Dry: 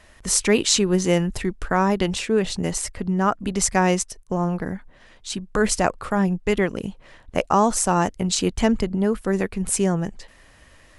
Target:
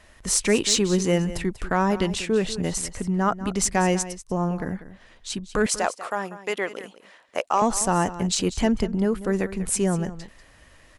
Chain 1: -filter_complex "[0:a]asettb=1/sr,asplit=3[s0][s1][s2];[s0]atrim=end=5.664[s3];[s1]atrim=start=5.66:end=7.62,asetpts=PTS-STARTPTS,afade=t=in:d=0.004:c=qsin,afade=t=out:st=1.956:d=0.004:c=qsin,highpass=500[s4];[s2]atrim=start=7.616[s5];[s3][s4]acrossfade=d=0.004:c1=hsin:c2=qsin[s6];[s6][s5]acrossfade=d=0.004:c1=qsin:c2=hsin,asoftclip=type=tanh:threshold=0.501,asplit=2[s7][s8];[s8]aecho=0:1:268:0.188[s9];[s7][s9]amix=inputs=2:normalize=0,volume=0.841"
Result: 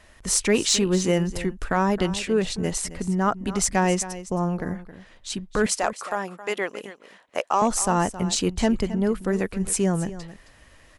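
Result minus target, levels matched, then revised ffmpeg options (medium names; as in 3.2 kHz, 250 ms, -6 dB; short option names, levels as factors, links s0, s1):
echo 76 ms late
-filter_complex "[0:a]asettb=1/sr,asplit=3[s0][s1][s2];[s0]atrim=end=5.664[s3];[s1]atrim=start=5.66:end=7.62,asetpts=PTS-STARTPTS,afade=t=in:d=0.004:c=qsin,afade=t=out:st=1.956:d=0.004:c=qsin,highpass=500[s4];[s2]atrim=start=7.616[s5];[s3][s4]acrossfade=d=0.004:c1=hsin:c2=qsin[s6];[s6][s5]acrossfade=d=0.004:c1=qsin:c2=hsin,asoftclip=type=tanh:threshold=0.501,asplit=2[s7][s8];[s8]aecho=0:1:192:0.188[s9];[s7][s9]amix=inputs=2:normalize=0,volume=0.841"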